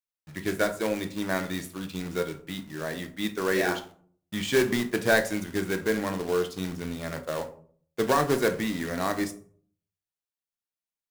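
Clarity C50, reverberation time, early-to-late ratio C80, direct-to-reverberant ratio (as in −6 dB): 13.5 dB, 0.50 s, 17.5 dB, 6.5 dB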